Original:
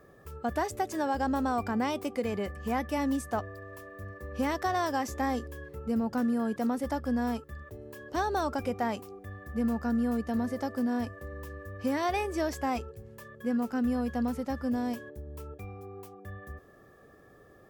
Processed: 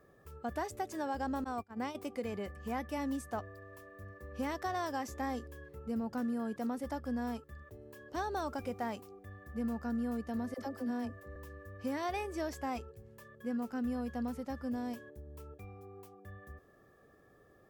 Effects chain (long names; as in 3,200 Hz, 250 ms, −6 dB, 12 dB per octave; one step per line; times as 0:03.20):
0:01.44–0:01.95: noise gate −28 dBFS, range −29 dB
0:08.47–0:09.08: floating-point word with a short mantissa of 4 bits
0:10.54–0:11.36: all-pass dispersion lows, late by 48 ms, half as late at 620 Hz
level −7 dB